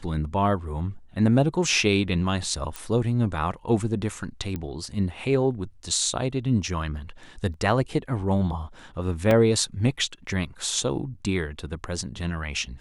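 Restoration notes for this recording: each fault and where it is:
2.76 s: pop
4.56 s: pop -18 dBFS
7.54 s: dropout 2 ms
9.31 s: dropout 2.4 ms

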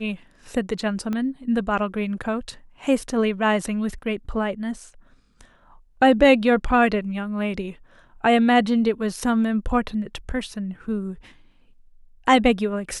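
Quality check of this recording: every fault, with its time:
1.13 s: pop -16 dBFS

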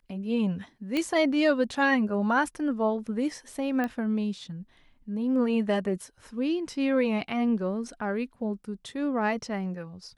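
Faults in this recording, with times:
0.97 s: pop -16 dBFS
3.84 s: pop -18 dBFS

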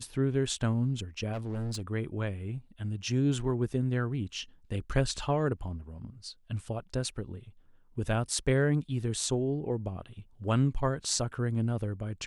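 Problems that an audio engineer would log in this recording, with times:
1.32–1.82 s: clipped -31 dBFS

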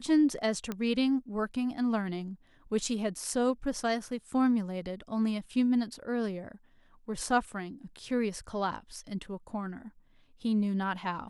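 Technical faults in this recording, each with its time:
0.72 s: pop -20 dBFS

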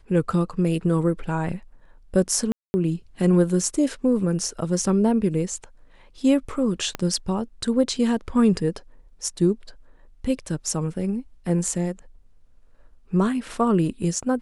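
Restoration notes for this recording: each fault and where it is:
2.52–2.74 s: dropout 220 ms
6.95 s: pop -12 dBFS

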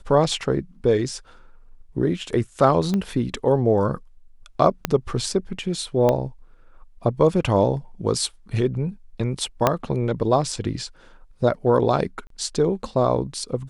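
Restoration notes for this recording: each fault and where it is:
2.94 s: pop -13 dBFS
4.85 s: pop -5 dBFS
6.09 s: pop -8 dBFS
9.67 s: pop -3 dBFS
12.27–12.30 s: dropout 33 ms

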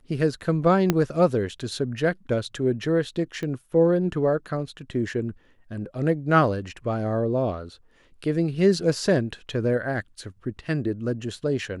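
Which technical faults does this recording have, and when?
0.90 s: pop -6 dBFS
3.43 s: pop -21 dBFS

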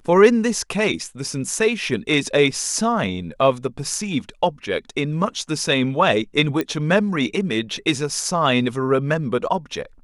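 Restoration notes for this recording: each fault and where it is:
6.61 s: pop -10 dBFS

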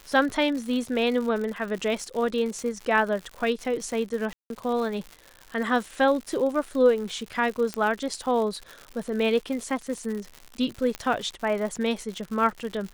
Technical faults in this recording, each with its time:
crackle 140 per s -32 dBFS
4.33–4.50 s: dropout 172 ms
7.74 s: pop -14 dBFS
10.95 s: pop -16 dBFS

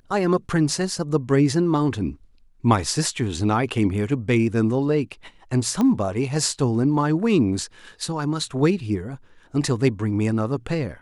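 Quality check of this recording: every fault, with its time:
5.81 s: pop -12 dBFS

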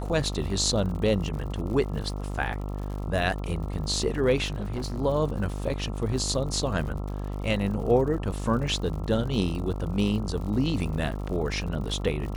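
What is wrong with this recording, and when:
buzz 50 Hz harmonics 27 -32 dBFS
crackle 95 per s -36 dBFS
4.45–4.99 s: clipped -27 dBFS

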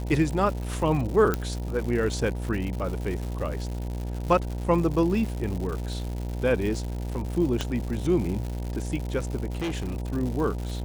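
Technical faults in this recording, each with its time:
buzz 60 Hz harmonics 16 -31 dBFS
crackle 210 per s -32 dBFS
1.34 s: pop -11 dBFS
7.61 s: pop -13 dBFS
9.57–10.01 s: clipped -26 dBFS

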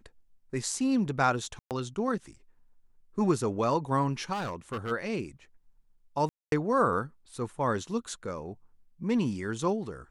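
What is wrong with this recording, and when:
1.59–1.71 s: dropout 118 ms
4.32–4.92 s: clipped -29.5 dBFS
6.29–6.52 s: dropout 232 ms

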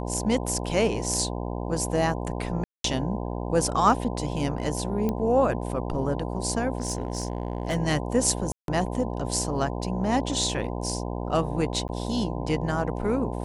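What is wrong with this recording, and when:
buzz 60 Hz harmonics 17 -31 dBFS
2.64–2.84 s: dropout 203 ms
5.09 s: pop -15 dBFS
6.77–7.76 s: clipped -21.5 dBFS
8.52–8.68 s: dropout 162 ms
11.88–11.89 s: dropout 9.8 ms

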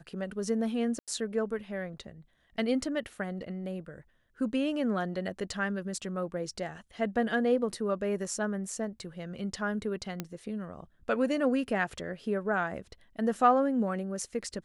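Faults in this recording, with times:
0.99–1.08 s: dropout 87 ms
10.20 s: pop -18 dBFS

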